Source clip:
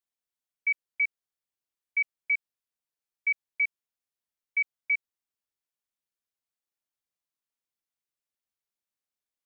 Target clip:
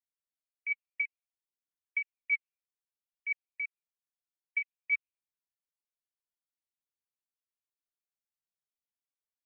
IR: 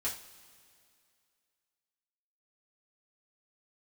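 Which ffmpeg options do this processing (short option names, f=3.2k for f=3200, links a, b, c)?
-af "alimiter=level_in=7.5dB:limit=-24dB:level=0:latency=1:release=187,volume=-7.5dB,aphaser=in_gain=1:out_gain=1:delay=3.1:decay=0.52:speed=0.58:type=triangular,afftdn=nr=18:nf=-59,volume=4.5dB"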